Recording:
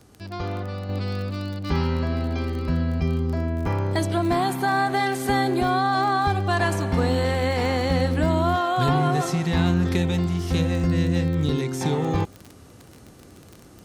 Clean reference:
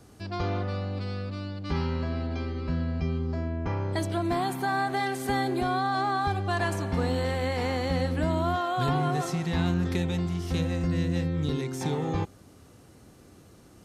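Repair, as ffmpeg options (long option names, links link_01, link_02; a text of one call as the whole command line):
ffmpeg -i in.wav -af "adeclick=threshold=4,asetnsamples=nb_out_samples=441:pad=0,asendcmd='0.89 volume volume -5.5dB',volume=0dB" out.wav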